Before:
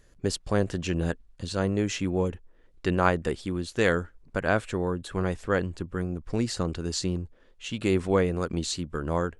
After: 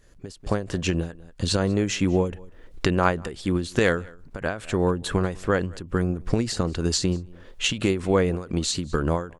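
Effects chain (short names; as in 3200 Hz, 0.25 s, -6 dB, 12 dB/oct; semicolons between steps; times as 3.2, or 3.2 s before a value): recorder AGC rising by 21 dB/s; echo 0.192 s -24 dB; ending taper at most 130 dB/s; gain +2.5 dB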